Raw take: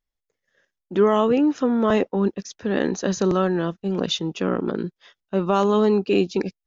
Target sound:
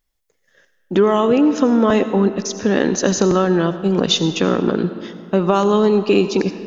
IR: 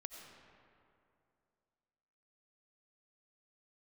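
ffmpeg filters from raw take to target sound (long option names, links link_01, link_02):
-filter_complex "[0:a]acompressor=threshold=-23dB:ratio=2.5,asplit=2[link_01][link_02];[1:a]atrim=start_sample=2205,asetrate=48510,aresample=44100,highshelf=frequency=5200:gain=11.5[link_03];[link_02][link_03]afir=irnorm=-1:irlink=0,volume=1dB[link_04];[link_01][link_04]amix=inputs=2:normalize=0,volume=6dB"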